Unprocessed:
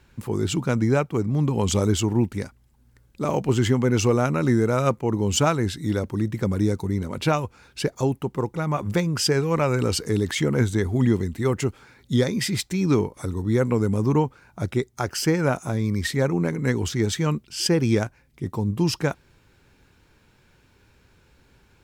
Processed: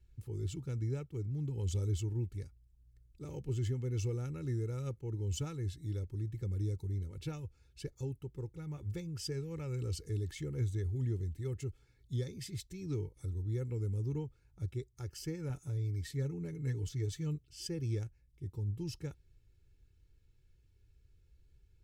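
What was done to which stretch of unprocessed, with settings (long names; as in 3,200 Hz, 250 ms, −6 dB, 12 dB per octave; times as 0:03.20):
0:15.49–0:17.50: comb filter 6.9 ms, depth 52%
whole clip: guitar amp tone stack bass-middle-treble 10-0-1; comb filter 2.3 ms, depth 68%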